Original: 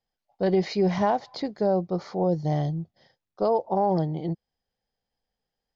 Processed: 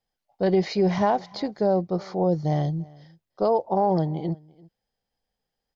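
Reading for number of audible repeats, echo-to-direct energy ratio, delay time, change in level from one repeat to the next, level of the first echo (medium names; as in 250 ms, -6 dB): 1, -24.0 dB, 340 ms, no regular repeats, -24.0 dB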